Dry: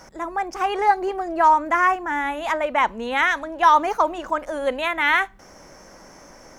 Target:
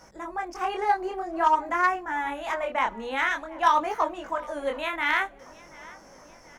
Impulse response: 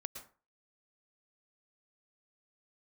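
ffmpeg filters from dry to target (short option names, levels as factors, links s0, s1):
-filter_complex "[0:a]asplit=2[s0][s1];[s1]adelay=731,lowpass=f=4700:p=1,volume=0.0841,asplit=2[s2][s3];[s3]adelay=731,lowpass=f=4700:p=1,volume=0.55,asplit=2[s4][s5];[s5]adelay=731,lowpass=f=4700:p=1,volume=0.55,asplit=2[s6][s7];[s7]adelay=731,lowpass=f=4700:p=1,volume=0.55[s8];[s0][s2][s4][s6][s8]amix=inputs=5:normalize=0,flanger=delay=19:depth=8:speed=0.5,aeval=exprs='0.501*(cos(1*acos(clip(val(0)/0.501,-1,1)))-cos(1*PI/2))+0.0708*(cos(3*acos(clip(val(0)/0.501,-1,1)))-cos(3*PI/2))+0.0126*(cos(5*acos(clip(val(0)/0.501,-1,1)))-cos(5*PI/2))':c=same"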